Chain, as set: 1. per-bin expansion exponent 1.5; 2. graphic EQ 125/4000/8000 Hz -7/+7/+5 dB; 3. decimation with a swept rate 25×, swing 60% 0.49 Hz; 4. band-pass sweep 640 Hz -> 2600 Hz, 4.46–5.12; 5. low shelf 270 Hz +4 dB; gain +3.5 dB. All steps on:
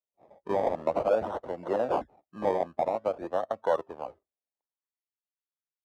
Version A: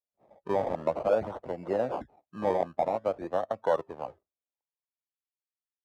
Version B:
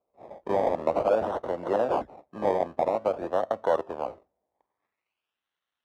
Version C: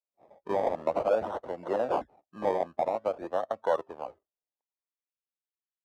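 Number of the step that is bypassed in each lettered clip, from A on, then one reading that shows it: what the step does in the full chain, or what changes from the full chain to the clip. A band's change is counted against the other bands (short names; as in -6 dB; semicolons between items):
2, 125 Hz band +3.0 dB; 1, momentary loudness spread change -4 LU; 5, 125 Hz band -2.5 dB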